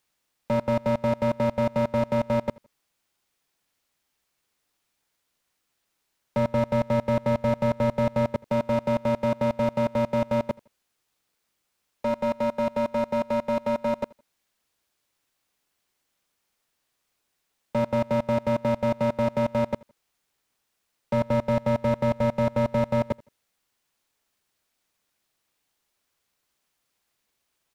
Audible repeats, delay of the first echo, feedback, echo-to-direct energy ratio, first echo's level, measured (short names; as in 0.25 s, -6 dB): 2, 82 ms, 31%, -23.0 dB, -23.5 dB